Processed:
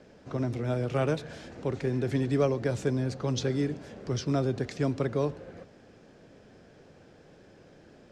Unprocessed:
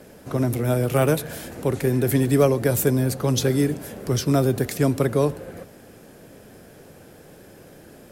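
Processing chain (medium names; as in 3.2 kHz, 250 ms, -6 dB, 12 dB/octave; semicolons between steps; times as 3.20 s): low-pass 6.1 kHz 24 dB/octave; trim -8 dB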